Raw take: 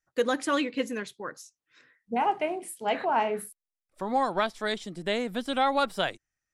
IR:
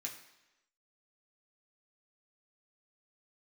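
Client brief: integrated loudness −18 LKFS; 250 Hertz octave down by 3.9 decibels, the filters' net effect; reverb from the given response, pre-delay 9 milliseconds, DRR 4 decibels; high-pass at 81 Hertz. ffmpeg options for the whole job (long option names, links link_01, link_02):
-filter_complex "[0:a]highpass=81,equalizer=frequency=250:width_type=o:gain=-4.5,asplit=2[link_01][link_02];[1:a]atrim=start_sample=2205,adelay=9[link_03];[link_02][link_03]afir=irnorm=-1:irlink=0,volume=-2.5dB[link_04];[link_01][link_04]amix=inputs=2:normalize=0,volume=10.5dB"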